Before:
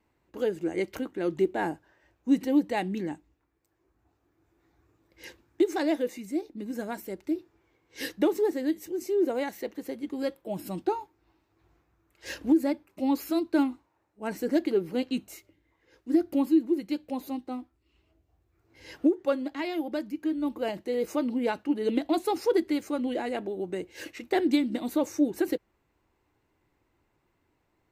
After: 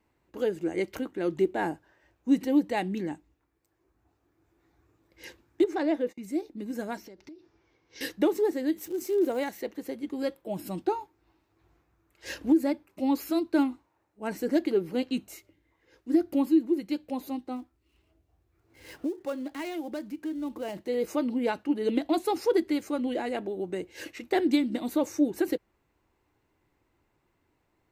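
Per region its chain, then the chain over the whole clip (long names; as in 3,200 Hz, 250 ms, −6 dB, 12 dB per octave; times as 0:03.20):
0:05.64–0:06.23: low-pass filter 2,100 Hz 6 dB per octave + noise gate −44 dBFS, range −30 dB
0:06.97–0:08.01: high shelf with overshoot 7,100 Hz −9 dB, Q 3 + downward compressor 16 to 1, threshold −43 dBFS
0:08.77–0:09.48: high-shelf EQ 12,000 Hz +10 dB + surface crackle 220 per second −39 dBFS
0:17.56–0:20.88: gap after every zero crossing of 0.078 ms + downward compressor 2 to 1, threshold −33 dBFS
whole clip: no processing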